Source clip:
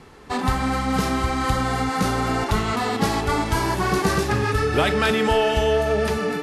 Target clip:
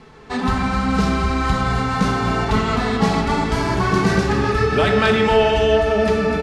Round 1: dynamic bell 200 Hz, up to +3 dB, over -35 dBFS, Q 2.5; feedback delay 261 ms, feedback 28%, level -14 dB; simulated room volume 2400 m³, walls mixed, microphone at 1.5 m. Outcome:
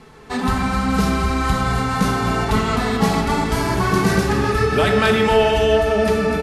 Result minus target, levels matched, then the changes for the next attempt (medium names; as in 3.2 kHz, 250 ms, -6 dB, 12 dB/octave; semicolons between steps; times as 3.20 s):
8 kHz band +4.0 dB
add after dynamic bell: low-pass 6.5 kHz 12 dB/octave